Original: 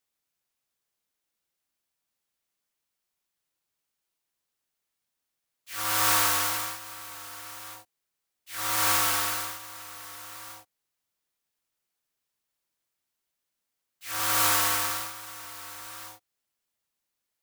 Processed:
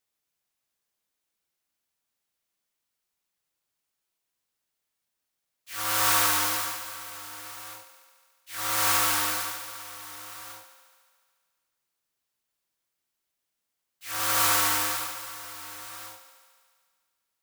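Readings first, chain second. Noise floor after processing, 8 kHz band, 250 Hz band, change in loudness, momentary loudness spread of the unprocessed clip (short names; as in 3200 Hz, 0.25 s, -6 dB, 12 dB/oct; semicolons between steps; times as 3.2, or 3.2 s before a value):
-83 dBFS, +0.5 dB, +1.0 dB, 0.0 dB, 19 LU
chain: thinning echo 72 ms, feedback 77%, high-pass 180 Hz, level -11.5 dB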